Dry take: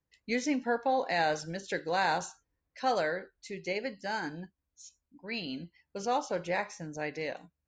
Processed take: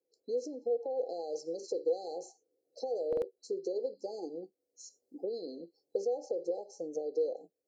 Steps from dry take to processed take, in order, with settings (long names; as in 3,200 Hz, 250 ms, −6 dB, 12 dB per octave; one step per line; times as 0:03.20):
camcorder AGC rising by 12 dB per second
brick-wall band-stop 840–4,000 Hz
0:01.19–0:02.16: dynamic equaliser 5,100 Hz, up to +6 dB, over −52 dBFS, Q 0.81
brickwall limiter −26 dBFS, peak gain reduction 7 dB
downward compressor, threshold −39 dBFS, peak gain reduction 9 dB
high-pass with resonance 360 Hz, resonance Q 3.8
hollow resonant body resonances 490/3,500 Hz, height 16 dB, ringing for 45 ms
buffer that repeats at 0:03.08, samples 2,048, times 2
level −7 dB